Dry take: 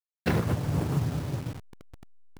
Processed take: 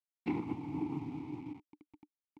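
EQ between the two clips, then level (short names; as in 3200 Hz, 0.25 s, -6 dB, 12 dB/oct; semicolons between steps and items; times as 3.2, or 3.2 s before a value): vowel filter u; +3.5 dB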